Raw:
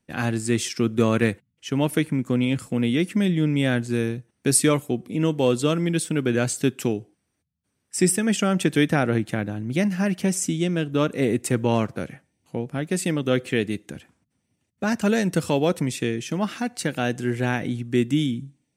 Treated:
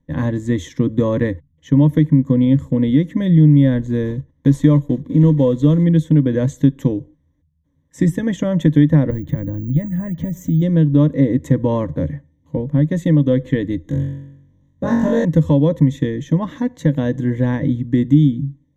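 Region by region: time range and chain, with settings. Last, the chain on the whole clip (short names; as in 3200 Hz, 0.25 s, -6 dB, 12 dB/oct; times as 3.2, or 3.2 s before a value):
4.05–5.84 block floating point 5-bit + high shelf 12000 Hz -11.5 dB
9.1–10.62 tone controls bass +8 dB, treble -3 dB + compressor 2.5:1, threshold -27 dBFS + careless resampling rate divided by 2×, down filtered, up zero stuff
13.82–15.25 bell 2400 Hz -4.5 dB 0.6 oct + flutter echo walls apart 3.7 m, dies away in 0.81 s
whole clip: ripple EQ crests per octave 1.1, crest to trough 16 dB; compressor 2:1, threshold -19 dBFS; tilt -4.5 dB/oct; gain -1.5 dB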